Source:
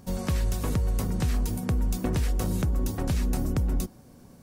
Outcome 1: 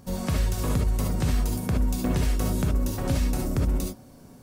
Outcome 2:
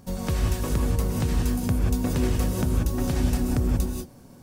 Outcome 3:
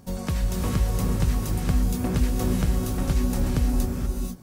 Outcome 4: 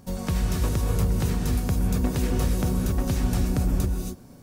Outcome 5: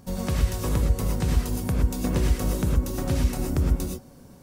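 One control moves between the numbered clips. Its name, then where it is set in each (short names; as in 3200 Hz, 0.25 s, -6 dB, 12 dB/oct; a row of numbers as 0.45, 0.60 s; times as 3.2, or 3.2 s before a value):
non-linear reverb, gate: 90, 210, 510, 300, 140 ms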